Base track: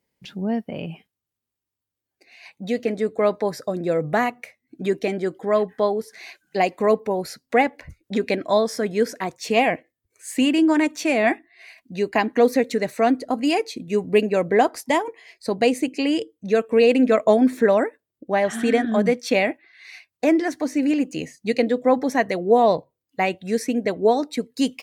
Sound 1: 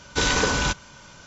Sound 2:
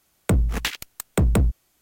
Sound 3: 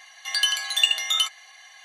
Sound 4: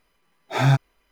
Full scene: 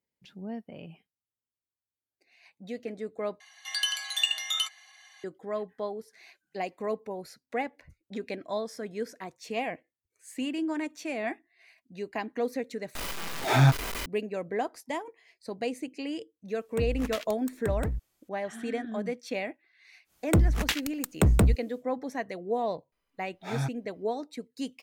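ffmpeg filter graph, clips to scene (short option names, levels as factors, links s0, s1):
-filter_complex "[4:a]asplit=2[s0][s1];[2:a]asplit=2[s2][s3];[0:a]volume=0.211[s4];[3:a]highpass=f=590:p=1[s5];[s0]aeval=exprs='val(0)+0.5*0.0562*sgn(val(0))':c=same[s6];[s2]alimiter=limit=0.15:level=0:latency=1:release=71[s7];[s4]asplit=3[s8][s9][s10];[s8]atrim=end=3.404[s11];[s5]atrim=end=1.84,asetpts=PTS-STARTPTS,volume=0.473[s12];[s9]atrim=start=5.236:end=12.954[s13];[s6]atrim=end=1.11,asetpts=PTS-STARTPTS,volume=0.708[s14];[s10]atrim=start=14.056[s15];[s7]atrim=end=1.81,asetpts=PTS-STARTPTS,volume=0.355,afade=t=in:d=0.004:c=hsin,afade=t=out:st=1.806:d=0.004:c=hsin,adelay=16480[s16];[s3]atrim=end=1.81,asetpts=PTS-STARTPTS,volume=0.794,afade=t=in:d=0.1,afade=t=out:st=1.71:d=0.1,adelay=883764S[s17];[s1]atrim=end=1.11,asetpts=PTS-STARTPTS,volume=0.211,afade=t=in:d=0.004:c=hsin,afade=t=out:st=1.106:d=0.004:c=hsin,adelay=1010772S[s18];[s11][s12]acrossfade=d=0.004:c1=hsin:c2=hsin[s19];[s19][s13]acrossfade=d=0.004:c1=hsin:c2=hsin[s20];[s20][s14]acrossfade=d=0.004:c1=hsin:c2=hsin[s21];[s21][s15]acrossfade=d=0.004:c1=hsin:c2=hsin[s22];[s22][s16][s17][s18]amix=inputs=4:normalize=0"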